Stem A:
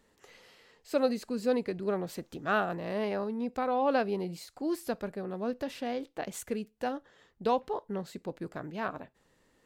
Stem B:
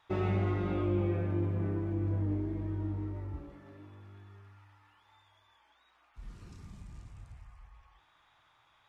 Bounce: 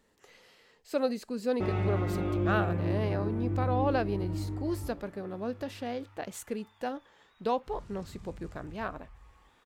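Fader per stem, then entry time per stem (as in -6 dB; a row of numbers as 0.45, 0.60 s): -1.5, +1.0 dB; 0.00, 1.50 s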